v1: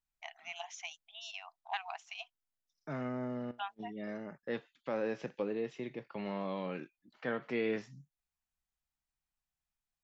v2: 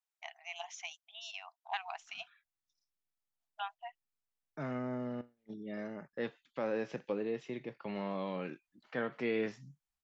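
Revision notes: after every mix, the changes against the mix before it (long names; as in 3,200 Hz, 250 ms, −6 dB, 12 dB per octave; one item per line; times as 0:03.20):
second voice: entry +1.70 s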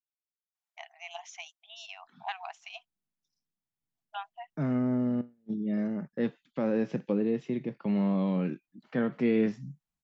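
first voice: entry +0.55 s
master: add parametric band 190 Hz +15 dB 1.8 octaves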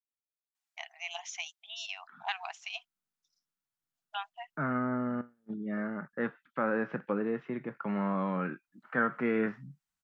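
second voice: add low-pass with resonance 1,400 Hz, resonance Q 3.7
master: add tilt shelving filter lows −6.5 dB, about 880 Hz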